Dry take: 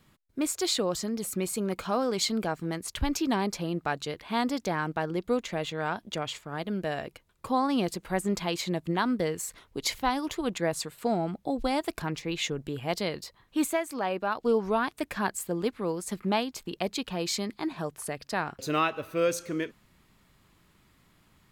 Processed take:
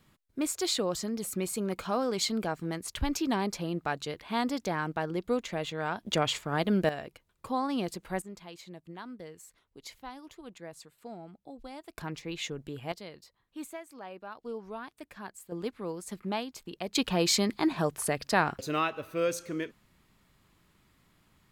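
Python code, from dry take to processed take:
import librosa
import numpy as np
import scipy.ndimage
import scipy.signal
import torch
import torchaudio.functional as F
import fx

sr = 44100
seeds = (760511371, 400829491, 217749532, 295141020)

y = fx.gain(x, sr, db=fx.steps((0.0, -2.0), (6.06, 5.5), (6.89, -4.5), (8.22, -16.5), (11.98, -5.5), (12.92, -14.0), (15.52, -6.0), (16.95, 5.0), (18.61, -3.0)))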